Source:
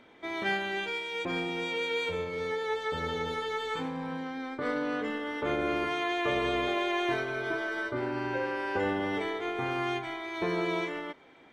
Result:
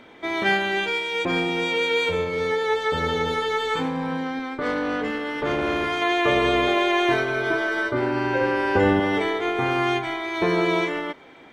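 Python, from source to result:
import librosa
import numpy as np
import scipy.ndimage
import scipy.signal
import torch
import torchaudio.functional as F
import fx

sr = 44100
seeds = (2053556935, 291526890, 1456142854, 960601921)

y = fx.tube_stage(x, sr, drive_db=26.0, bias=0.45, at=(4.39, 6.02))
y = fx.low_shelf(y, sr, hz=240.0, db=8.0, at=(8.41, 9.0))
y = y * librosa.db_to_amplitude(9.0)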